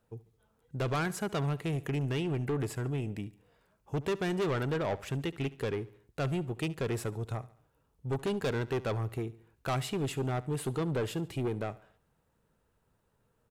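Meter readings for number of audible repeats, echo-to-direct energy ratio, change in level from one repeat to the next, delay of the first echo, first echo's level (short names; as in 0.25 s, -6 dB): 3, -18.5 dB, -6.5 dB, 71 ms, -19.5 dB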